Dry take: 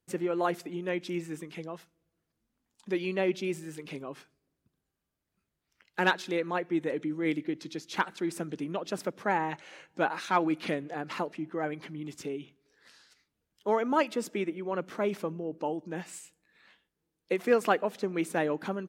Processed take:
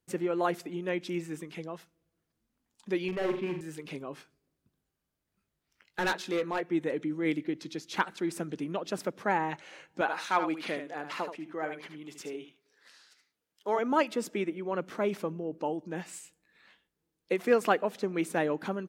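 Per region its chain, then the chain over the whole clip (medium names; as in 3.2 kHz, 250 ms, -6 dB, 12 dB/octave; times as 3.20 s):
3.08–3.61 s: low-pass 2.5 kHz 24 dB/octave + hard clipper -28 dBFS + flutter echo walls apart 7.6 m, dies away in 0.44 s
4.11–6.63 s: doubling 20 ms -11 dB + overload inside the chain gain 24.5 dB
10.01–13.79 s: high-pass 470 Hz 6 dB/octave + delay 75 ms -8.5 dB
whole clip: none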